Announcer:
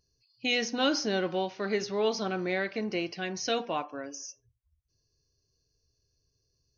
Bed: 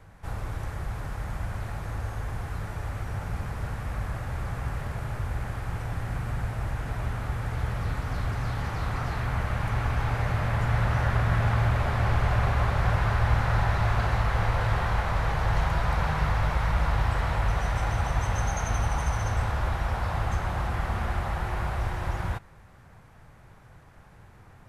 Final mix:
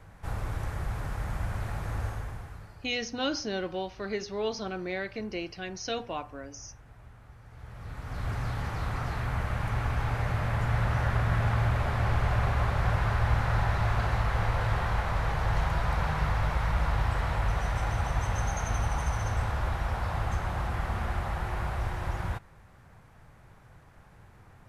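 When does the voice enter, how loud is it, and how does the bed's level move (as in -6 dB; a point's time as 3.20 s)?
2.40 s, -3.5 dB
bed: 2.06 s 0 dB
3.00 s -21 dB
7.44 s -21 dB
8.31 s -2.5 dB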